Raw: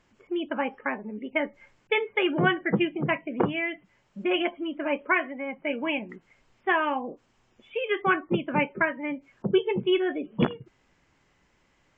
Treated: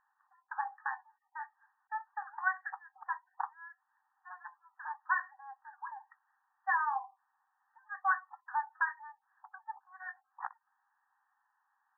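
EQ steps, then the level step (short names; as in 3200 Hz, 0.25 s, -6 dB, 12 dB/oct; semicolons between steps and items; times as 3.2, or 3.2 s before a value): brick-wall FIR band-pass 750–1900 Hz; tilt -2.5 dB/oct; notch 1400 Hz, Q 25; -4.0 dB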